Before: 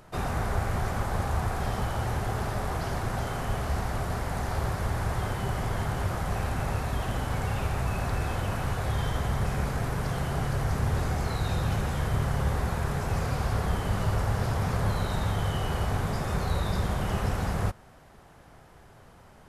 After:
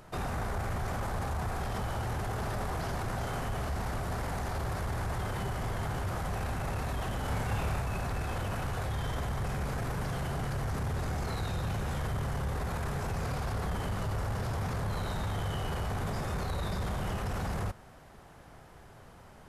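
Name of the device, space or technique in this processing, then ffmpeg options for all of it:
soft clipper into limiter: -filter_complex "[0:a]asoftclip=type=tanh:threshold=-18.5dB,alimiter=level_in=3dB:limit=-24dB:level=0:latency=1:release=13,volume=-3dB,asettb=1/sr,asplit=3[link_01][link_02][link_03];[link_01]atrim=end=7.214[link_04];[link_02]atrim=start=7.21:end=7.81,asetpts=PTS-STARTPTS,afade=type=in:duration=0.004:curve=qsin,afade=type=out:start_time=0.596:duration=0.004:curve=qsin,asplit=2[link_05][link_06];[link_06]adelay=28,volume=-3dB[link_07];[link_05][link_07]amix=inputs=2:normalize=0,atrim=end_sample=26460[link_08];[link_03]atrim=start=7.806[link_09];[link_04][link_08]acrossfade=duration=0.004:curve1=hsin:curve2=qsin[link_10];[link_10][link_09]acrossfade=duration=0.004:curve1=qsin:curve2=hsin"

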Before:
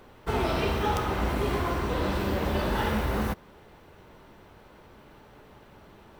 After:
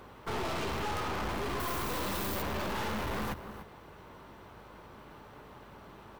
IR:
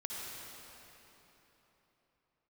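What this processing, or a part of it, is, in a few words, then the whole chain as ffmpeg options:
valve amplifier with mains hum: -filter_complex "[0:a]highpass=72,equalizer=frequency=1100:width_type=o:width=0.6:gain=5,asettb=1/sr,asplit=3[link_01][link_02][link_03];[link_01]atrim=end=1.604[link_04];[link_02]atrim=start=1.6:end=2.42,asetpts=PTS-STARTPTS,afade=type=in:duration=0.004:curve=qsin,afade=type=out:start_time=0.816:duration=0.004:curve=qsin,aemphasis=mode=production:type=75kf[link_05];[link_03]atrim=start=2.416[link_06];[link_04][link_05]acrossfade=duration=0.004:curve1=hsin:curve2=qsin[link_07];[link_07][link_06]acrossfade=duration=0.004:curve1=qsin:curve2=hsin,aecho=1:1:294:0.126,aeval=exprs='(tanh(56.2*val(0)+0.5)-tanh(0.5))/56.2':channel_layout=same,aeval=exprs='val(0)+0.000794*(sin(2*PI*50*n/s)+sin(2*PI*2*50*n/s)/2+sin(2*PI*3*50*n/s)/3+sin(2*PI*4*50*n/s)/4+sin(2*PI*5*50*n/s)/5)':channel_layout=same,volume=2dB"

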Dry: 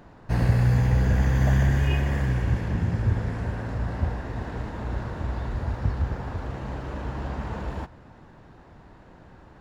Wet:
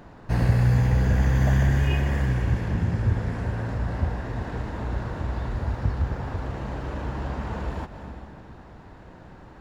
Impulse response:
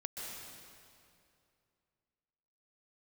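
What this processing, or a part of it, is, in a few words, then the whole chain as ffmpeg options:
ducked reverb: -filter_complex "[0:a]asplit=3[link_01][link_02][link_03];[1:a]atrim=start_sample=2205[link_04];[link_02][link_04]afir=irnorm=-1:irlink=0[link_05];[link_03]apad=whole_len=423645[link_06];[link_05][link_06]sidechaincompress=threshold=-35dB:ratio=8:attack=5.9:release=252,volume=-4dB[link_07];[link_01][link_07]amix=inputs=2:normalize=0"

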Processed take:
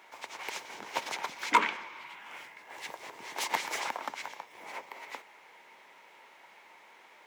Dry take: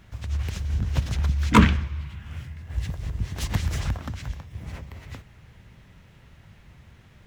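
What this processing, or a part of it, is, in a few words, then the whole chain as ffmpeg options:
laptop speaker: -af "highpass=frequency=380:width=0.5412,highpass=frequency=380:width=1.3066,equalizer=frequency=910:width_type=o:width=0.42:gain=11.5,equalizer=frequency=2200:width_type=o:width=0.23:gain=8,alimiter=limit=-9.5dB:level=0:latency=1:release=401"

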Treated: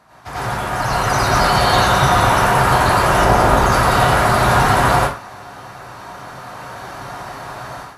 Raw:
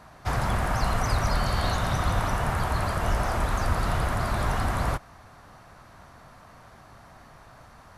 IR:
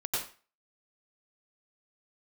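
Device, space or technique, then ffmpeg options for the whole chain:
far laptop microphone: -filter_complex "[1:a]atrim=start_sample=2205[link_01];[0:a][link_01]afir=irnorm=-1:irlink=0,highpass=frequency=190:poles=1,dynaudnorm=framelen=710:gausssize=3:maxgain=15.5dB,asettb=1/sr,asplit=3[link_02][link_03][link_04];[link_02]atrim=end=3.244[link_05];[link_03]atrim=start=3.24:end=3.72,asetpts=PTS-STARTPTS,afade=type=in:duration=0.004:curve=qsin,afade=type=out:start_time=0.476:duration=0.004:curve=qsin,tiltshelf=frequency=970:gain=3[link_06];[link_04]atrim=start=3.716[link_07];[link_05][link_06]acrossfade=duration=0.004:curve1=hsin:curve2=qsin[link_08];[link_08][link_07]acrossfade=duration=0.004:curve1=qsin:curve2=hsin"

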